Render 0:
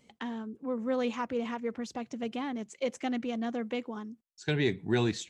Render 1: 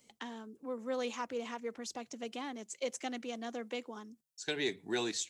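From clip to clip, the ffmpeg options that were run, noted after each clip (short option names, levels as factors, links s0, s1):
-filter_complex "[0:a]bass=f=250:g=-4,treble=f=4000:g=11,bandreject=f=50:t=h:w=6,bandreject=f=100:t=h:w=6,bandreject=f=150:t=h:w=6,acrossover=split=240|1900[s0][s1][s2];[s0]acompressor=threshold=0.00282:ratio=6[s3];[s3][s1][s2]amix=inputs=3:normalize=0,volume=0.596"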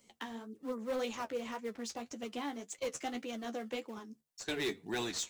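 -filter_complex "[0:a]asplit=2[s0][s1];[s1]acrusher=samples=16:mix=1:aa=0.000001:lfo=1:lforange=25.6:lforate=3.6,volume=0.282[s2];[s0][s2]amix=inputs=2:normalize=0,flanger=delay=9.2:depth=4.9:regen=32:speed=1.8:shape=sinusoidal,asoftclip=type=hard:threshold=0.0224,volume=1.41"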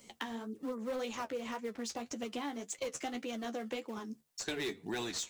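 -af "acompressor=threshold=0.00447:ratio=3,volume=2.66"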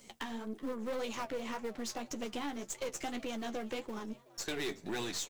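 -filter_complex "[0:a]aeval=exprs='if(lt(val(0),0),0.447*val(0),val(0))':c=same,asplit=4[s0][s1][s2][s3];[s1]adelay=376,afreqshift=130,volume=0.0794[s4];[s2]adelay=752,afreqshift=260,volume=0.0389[s5];[s3]adelay=1128,afreqshift=390,volume=0.0191[s6];[s0][s4][s5][s6]amix=inputs=4:normalize=0,asoftclip=type=hard:threshold=0.0188,volume=1.5"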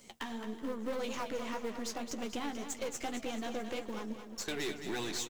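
-af "aecho=1:1:218|436|654|872|1090:0.355|0.17|0.0817|0.0392|0.0188"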